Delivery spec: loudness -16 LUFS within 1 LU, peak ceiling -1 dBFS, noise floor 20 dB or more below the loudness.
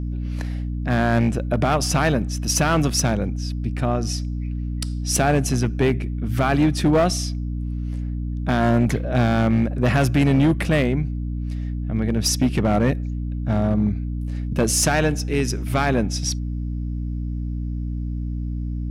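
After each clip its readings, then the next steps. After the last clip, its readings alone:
clipped samples 1.6%; clipping level -12.0 dBFS; hum 60 Hz; highest harmonic 300 Hz; hum level -24 dBFS; loudness -22.0 LUFS; peak level -12.0 dBFS; loudness target -16.0 LUFS
-> clip repair -12 dBFS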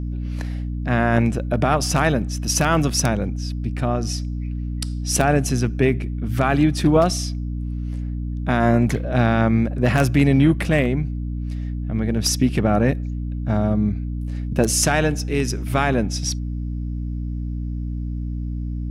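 clipped samples 0.0%; hum 60 Hz; highest harmonic 300 Hz; hum level -23 dBFS
-> hum notches 60/120/180/240/300 Hz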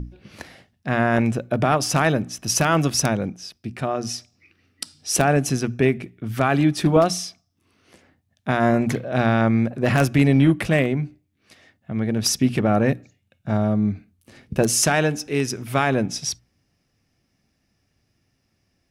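hum not found; loudness -21.0 LUFS; peak level -3.0 dBFS; loudness target -16.0 LUFS
-> trim +5 dB; peak limiter -1 dBFS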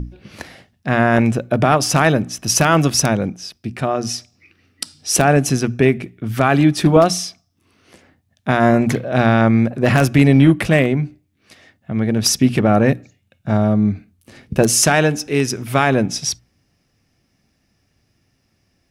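loudness -16.0 LUFS; peak level -1.0 dBFS; noise floor -66 dBFS

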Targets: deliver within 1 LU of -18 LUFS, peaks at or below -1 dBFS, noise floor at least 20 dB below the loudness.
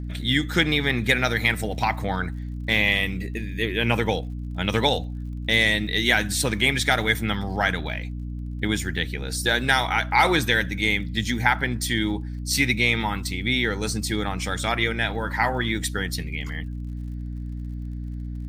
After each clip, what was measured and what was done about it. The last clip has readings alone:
tick rate 46 per s; hum 60 Hz; highest harmonic 300 Hz; hum level -29 dBFS; loudness -23.0 LUFS; peak level -5.0 dBFS; loudness target -18.0 LUFS
-> de-click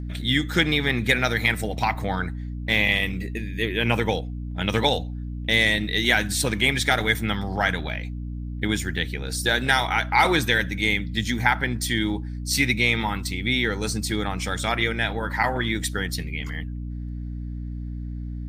tick rate 0.60 per s; hum 60 Hz; highest harmonic 300 Hz; hum level -29 dBFS
-> hum notches 60/120/180/240/300 Hz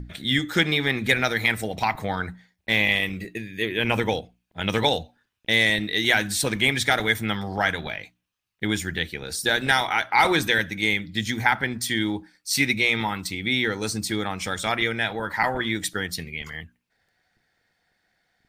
hum not found; loudness -23.5 LUFS; peak level -5.0 dBFS; loudness target -18.0 LUFS
-> trim +5.5 dB; peak limiter -1 dBFS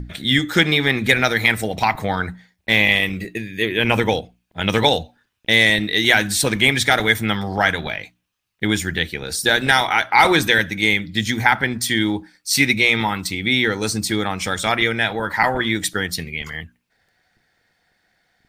loudness -18.0 LUFS; peak level -1.0 dBFS; noise floor -69 dBFS

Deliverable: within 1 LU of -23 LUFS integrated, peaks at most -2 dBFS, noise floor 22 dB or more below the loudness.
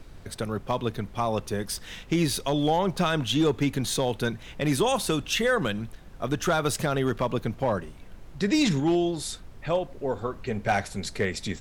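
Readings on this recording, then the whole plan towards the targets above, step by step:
clipped samples 0.4%; clipping level -15.5 dBFS; noise floor -45 dBFS; noise floor target -49 dBFS; loudness -27.0 LUFS; peak level -15.5 dBFS; loudness target -23.0 LUFS
-> clip repair -15.5 dBFS; noise print and reduce 6 dB; trim +4 dB

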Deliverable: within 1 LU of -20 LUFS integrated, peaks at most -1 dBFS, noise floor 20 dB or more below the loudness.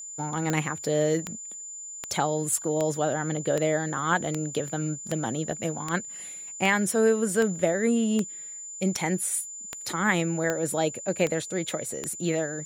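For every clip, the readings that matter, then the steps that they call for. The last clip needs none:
clicks found 16; steady tone 7.1 kHz; tone level -37 dBFS; loudness -27.5 LUFS; peak level -9.0 dBFS; loudness target -20.0 LUFS
-> de-click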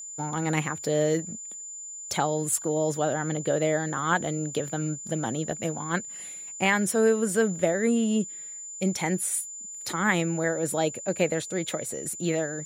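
clicks found 0; steady tone 7.1 kHz; tone level -37 dBFS
-> band-stop 7.1 kHz, Q 30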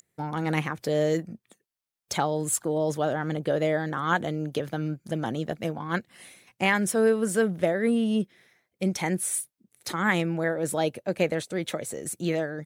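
steady tone not found; loudness -27.5 LUFS; peak level -9.5 dBFS; loudness target -20.0 LUFS
-> trim +7.5 dB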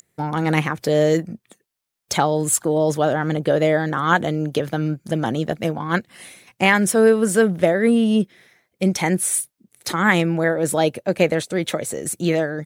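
loudness -20.0 LUFS; peak level -2.0 dBFS; noise floor -77 dBFS

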